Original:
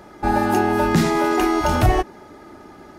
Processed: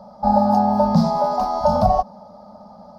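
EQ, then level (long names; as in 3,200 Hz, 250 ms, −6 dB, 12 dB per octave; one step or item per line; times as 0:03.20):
drawn EQ curve 130 Hz 0 dB, 210 Hz +15 dB, 350 Hz −25 dB, 560 Hz +14 dB, 1,100 Hz +7 dB, 1,800 Hz −20 dB, 2,800 Hz −18 dB, 4,900 Hz +7 dB, 7,200 Hz −14 dB, 15,000 Hz −10 dB
−6.0 dB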